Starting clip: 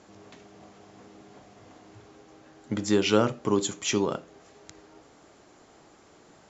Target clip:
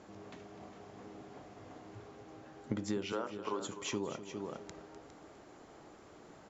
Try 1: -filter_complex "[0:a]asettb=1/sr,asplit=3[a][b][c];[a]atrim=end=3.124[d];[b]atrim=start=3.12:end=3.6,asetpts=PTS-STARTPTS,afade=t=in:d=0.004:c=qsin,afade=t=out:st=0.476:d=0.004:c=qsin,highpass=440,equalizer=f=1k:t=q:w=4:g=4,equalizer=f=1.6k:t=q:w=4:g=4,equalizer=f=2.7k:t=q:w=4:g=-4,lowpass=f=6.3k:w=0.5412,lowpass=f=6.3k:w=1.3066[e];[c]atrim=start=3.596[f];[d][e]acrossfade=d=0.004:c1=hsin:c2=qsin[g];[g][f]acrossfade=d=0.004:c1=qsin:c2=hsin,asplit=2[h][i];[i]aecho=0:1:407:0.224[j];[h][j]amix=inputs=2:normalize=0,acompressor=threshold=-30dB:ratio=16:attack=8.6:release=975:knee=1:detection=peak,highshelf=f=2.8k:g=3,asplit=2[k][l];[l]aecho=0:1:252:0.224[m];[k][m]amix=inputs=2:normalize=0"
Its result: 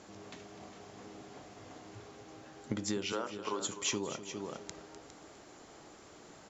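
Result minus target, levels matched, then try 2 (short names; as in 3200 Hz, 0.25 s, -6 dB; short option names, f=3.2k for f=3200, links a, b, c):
4000 Hz band +3.0 dB
-filter_complex "[0:a]asettb=1/sr,asplit=3[a][b][c];[a]atrim=end=3.124[d];[b]atrim=start=3.12:end=3.6,asetpts=PTS-STARTPTS,afade=t=in:d=0.004:c=qsin,afade=t=out:st=0.476:d=0.004:c=qsin,highpass=440,equalizer=f=1k:t=q:w=4:g=4,equalizer=f=1.6k:t=q:w=4:g=4,equalizer=f=2.7k:t=q:w=4:g=-4,lowpass=f=6.3k:w=0.5412,lowpass=f=6.3k:w=1.3066[e];[c]atrim=start=3.596[f];[d][e]acrossfade=d=0.004:c1=hsin:c2=qsin[g];[g][f]acrossfade=d=0.004:c1=qsin:c2=hsin,asplit=2[h][i];[i]aecho=0:1:407:0.224[j];[h][j]amix=inputs=2:normalize=0,acompressor=threshold=-30dB:ratio=16:attack=8.6:release=975:knee=1:detection=peak,highshelf=f=2.8k:g=-7.5,asplit=2[k][l];[l]aecho=0:1:252:0.224[m];[k][m]amix=inputs=2:normalize=0"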